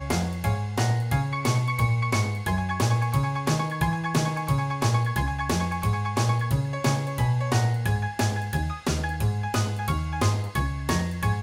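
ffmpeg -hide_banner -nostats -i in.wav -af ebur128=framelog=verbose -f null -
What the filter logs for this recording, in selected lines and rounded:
Integrated loudness:
  I:         -25.7 LUFS
  Threshold: -35.7 LUFS
Loudness range:
  LRA:         1.4 LU
  Threshold: -45.6 LUFS
  LRA low:   -26.5 LUFS
  LRA high:  -25.1 LUFS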